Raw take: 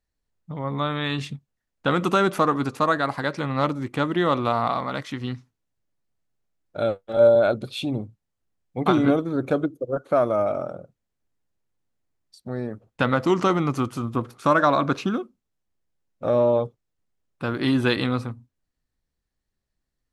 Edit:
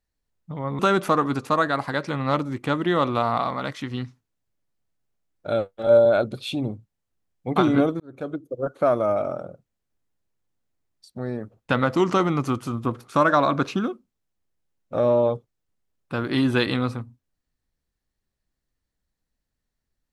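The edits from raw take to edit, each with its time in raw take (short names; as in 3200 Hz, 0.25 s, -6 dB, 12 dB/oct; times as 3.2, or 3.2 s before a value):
0.79–2.09 cut
9.3–9.99 fade in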